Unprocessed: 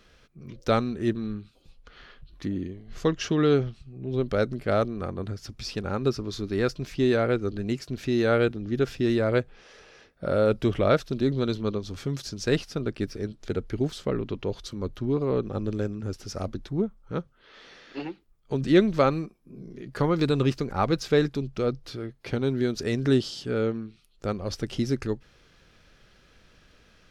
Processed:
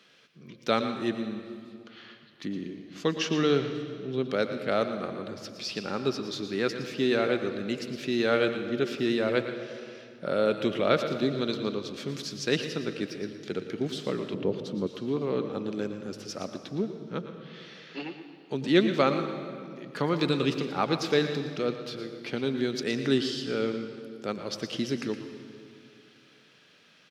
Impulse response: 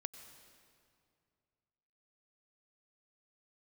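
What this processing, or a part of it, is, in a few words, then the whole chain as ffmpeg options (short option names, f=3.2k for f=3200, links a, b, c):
PA in a hall: -filter_complex "[0:a]highpass=f=150:w=0.5412,highpass=f=150:w=1.3066,equalizer=f=3.1k:t=o:w=1.5:g=7,aecho=1:1:116:0.251[a];[1:a]atrim=start_sample=2205[b];[a][b]afir=irnorm=-1:irlink=0,asettb=1/sr,asplit=3[c][d][e];[c]atrim=end=14.344[f];[d]atrim=start=14.34:end=14.87,asetpts=PTS-STARTPTS,afade=t=in:d=0.004:c=qsin,afade=t=out:st=0.526:d=0.004:c=qsin,tiltshelf=f=970:g=8[g];[e]atrim=start=14.866[h];[f][g]acrossfade=d=0.004:c1=hsin:c2=qsin[i];[i][h]acrossfade=d=0.004:c1=qsin:c2=hsin"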